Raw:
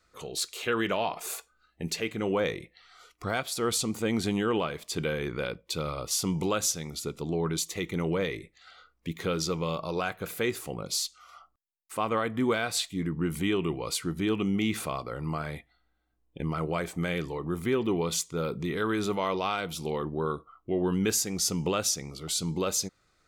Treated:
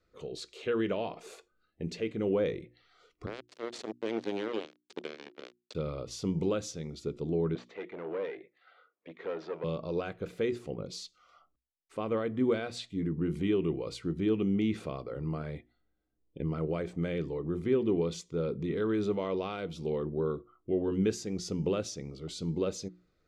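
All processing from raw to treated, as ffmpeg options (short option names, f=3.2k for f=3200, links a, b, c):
-filter_complex "[0:a]asettb=1/sr,asplit=3[a][b][c];[a]atrim=end=3.264[d];[b]atrim=start=3.26:end=5.75,asetpts=PTS-STARTPTS,afade=t=in:d=0.004:c=qsin,afade=t=out:st=2.486:d=0.004:c=qsin,acrossover=split=440|3000[e][f][g];[f]acompressor=threshold=-33dB:ratio=5:attack=3.2:release=140:knee=2.83:detection=peak[h];[e][h][g]amix=inputs=3:normalize=0,acrusher=bits=3:mix=0:aa=0.5,highpass=330,lowpass=7.8k[i];[c]atrim=start=5.746[j];[d][i]acrossfade=d=0.004:c1=hsin:c2=qsin[k];[k][j]acrossfade=d=0.004:c1=qsin:c2=hsin,asettb=1/sr,asplit=3[l][m][n];[l]atrim=end=7.554[o];[m]atrim=start=7.55:end=9.64,asetpts=PTS-STARTPTS,afade=t=in:d=0.004:c=qsin,afade=t=out:st=2.086:d=0.004:c=qsin,acontrast=79,aeval=exprs='(tanh(12.6*val(0)+0.55)-tanh(0.55))/12.6':c=same,highpass=600,lowpass=2k[p];[n]atrim=start=9.636[q];[o][p]acrossfade=d=0.004:c1=hsin:c2=qsin[r];[r][q]acrossfade=d=0.004:c1=qsin:c2=hsin,lowpass=5k,lowshelf=f=640:t=q:w=1.5:g=7.5,bandreject=f=60:t=h:w=6,bandreject=f=120:t=h:w=6,bandreject=f=180:t=h:w=6,bandreject=f=240:t=h:w=6,bandreject=f=300:t=h:w=6,bandreject=f=360:t=h:w=6,volume=-9dB"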